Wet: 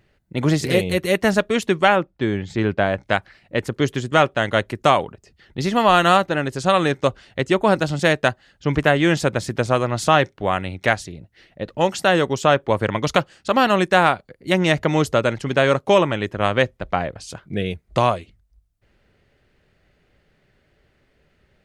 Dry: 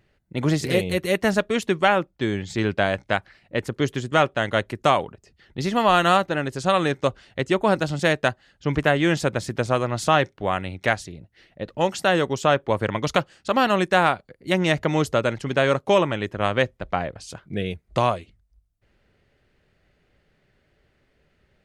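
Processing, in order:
0:01.95–0:03.01: high-shelf EQ 5,600 Hz → 2,900 Hz −12 dB
level +3 dB

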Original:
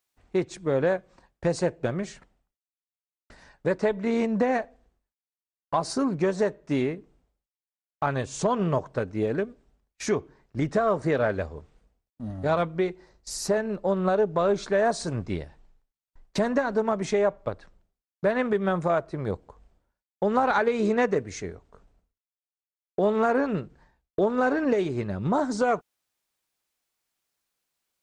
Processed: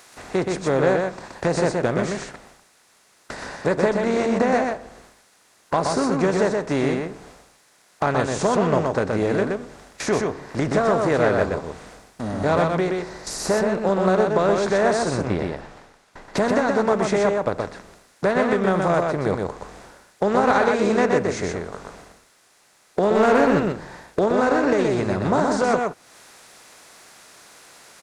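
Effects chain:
compressor on every frequency bin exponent 0.6
0:15.14–0:16.37: low-pass filter 3,400 Hz 6 dB per octave
0:23.15–0:23.60: leveller curve on the samples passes 1
single-tap delay 124 ms −3.5 dB
one half of a high-frequency compander encoder only

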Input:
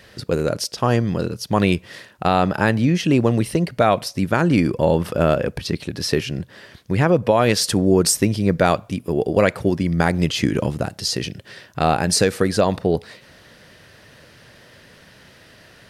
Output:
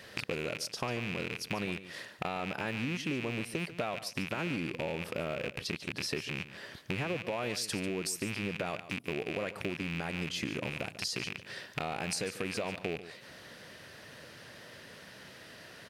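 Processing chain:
loose part that buzzes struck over −29 dBFS, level −11 dBFS
high-pass filter 160 Hz 6 dB per octave
brickwall limiter −8 dBFS, peak gain reduction 5.5 dB
downward compressor 4 to 1, threshold −32 dBFS, peak gain reduction 15.5 dB
single-tap delay 144 ms −14 dB
level −2.5 dB

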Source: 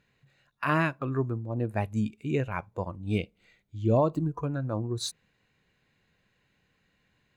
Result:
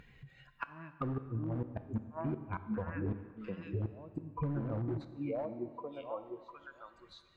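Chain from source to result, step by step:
spectral dynamics exaggerated over time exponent 1.5
echo through a band-pass that steps 704 ms, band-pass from 260 Hz, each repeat 1.4 octaves, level −9 dB
gate with flip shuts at −23 dBFS, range −35 dB
in parallel at −9 dB: wrap-around overflow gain 31.5 dB
on the sum: downward compressor 10 to 1, threshold −48 dBFS, peak gain reduction 19 dB
treble cut that deepens with the level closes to 1,500 Hz, closed at −46.5 dBFS
upward compression, threshold −55 dBFS
high-shelf EQ 2,300 Hz −12 dB
dense smooth reverb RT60 1.9 s, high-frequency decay 0.85×, DRR 10 dB
level +14 dB

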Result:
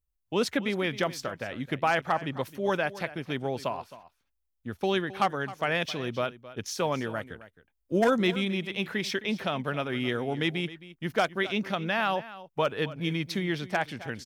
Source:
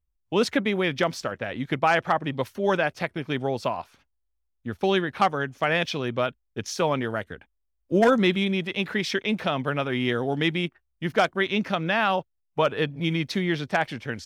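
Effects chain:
high-shelf EQ 9,700 Hz +9.5 dB
single-tap delay 265 ms −16.5 dB
level −4.5 dB

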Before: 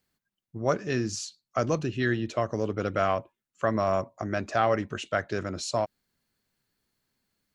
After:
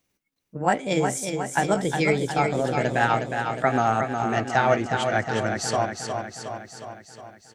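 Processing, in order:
pitch glide at a constant tempo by +5.5 semitones ending unshifted
on a send: repeating echo 362 ms, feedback 60%, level −6 dB
on the sum: level +5 dB

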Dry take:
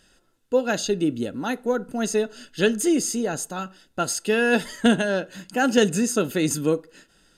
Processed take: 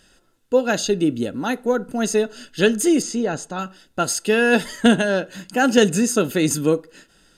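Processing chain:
0:03.02–0:03.59: high-frequency loss of the air 86 metres
level +3.5 dB

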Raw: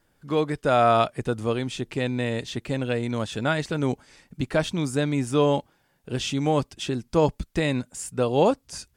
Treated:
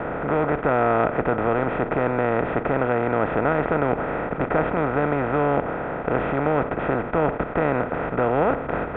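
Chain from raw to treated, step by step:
compressor on every frequency bin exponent 0.2
Butterworth low-pass 2,300 Hz 36 dB per octave
noise gate with hold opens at −17 dBFS
level −6 dB

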